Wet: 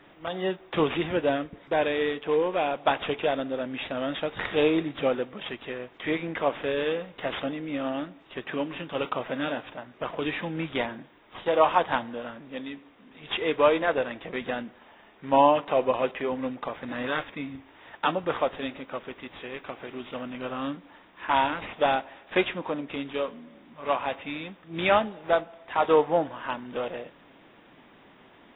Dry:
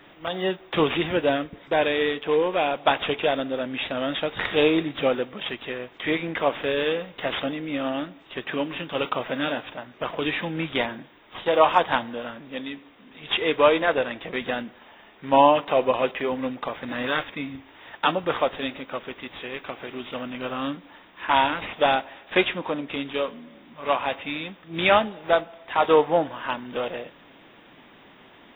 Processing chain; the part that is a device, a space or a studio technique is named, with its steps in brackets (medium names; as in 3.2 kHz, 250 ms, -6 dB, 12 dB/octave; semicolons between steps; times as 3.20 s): behind a face mask (treble shelf 3.3 kHz -8 dB); trim -2.5 dB